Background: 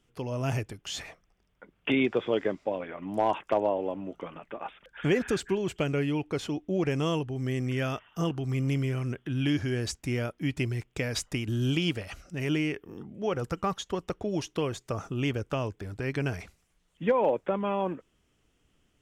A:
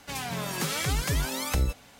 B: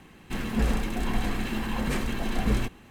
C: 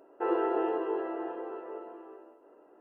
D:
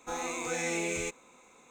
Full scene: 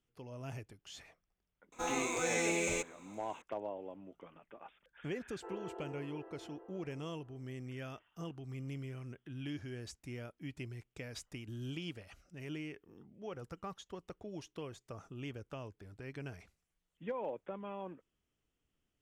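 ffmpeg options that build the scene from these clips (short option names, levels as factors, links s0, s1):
-filter_complex "[0:a]volume=0.178[s0];[4:a]atrim=end=1.7,asetpts=PTS-STARTPTS,volume=0.891,afade=t=in:d=0.004:c=hsin,afade=t=out:st=1.696:d=0.004:c=hsin,adelay=1720[s1];[3:a]atrim=end=2.8,asetpts=PTS-STARTPTS,volume=0.126,afade=t=in:d=0.004:c=hsin,afade=t=out:st=2.796:d=0.004:c=hsin,adelay=5220[s2];[s0][s1][s2]amix=inputs=3:normalize=0"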